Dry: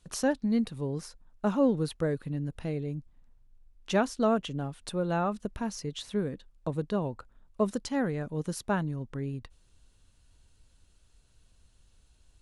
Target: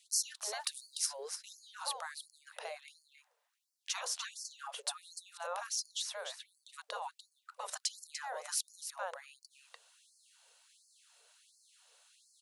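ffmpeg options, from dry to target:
-filter_complex "[0:a]asplit=3[a][b][c];[a]afade=t=out:st=0.59:d=0.02[d];[b]highshelf=f=2.2k:g=9.5,afade=t=in:st=0.59:d=0.02,afade=t=out:st=1.05:d=0.02[e];[c]afade=t=in:st=1.05:d=0.02[f];[d][e][f]amix=inputs=3:normalize=0,aecho=1:1:295:0.355,afftfilt=real='re*lt(hypot(re,im),0.0708)':imag='im*lt(hypot(re,im),0.0708)':win_size=1024:overlap=0.75,acrossover=split=180|1200|3600[g][h][i][j];[i]acompressor=threshold=-57dB:ratio=8[k];[g][h][k][j]amix=inputs=4:normalize=0,afftfilt=real='re*gte(b*sr/1024,410*pow(4300/410,0.5+0.5*sin(2*PI*1.4*pts/sr)))':imag='im*gte(b*sr/1024,410*pow(4300/410,0.5+0.5*sin(2*PI*1.4*pts/sr)))':win_size=1024:overlap=0.75,volume=6.5dB"

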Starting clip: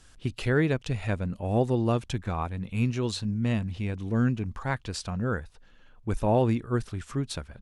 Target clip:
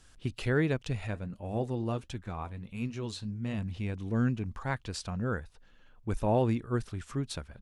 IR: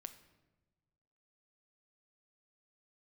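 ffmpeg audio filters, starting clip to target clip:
-filter_complex "[0:a]asplit=3[a][b][c];[a]afade=t=out:st=1.06:d=0.02[d];[b]flanger=delay=3.2:depth=6.8:regen=-70:speed=1.4:shape=triangular,afade=t=in:st=1.06:d=0.02,afade=t=out:st=3.57:d=0.02[e];[c]afade=t=in:st=3.57:d=0.02[f];[d][e][f]amix=inputs=3:normalize=0,volume=-3.5dB"

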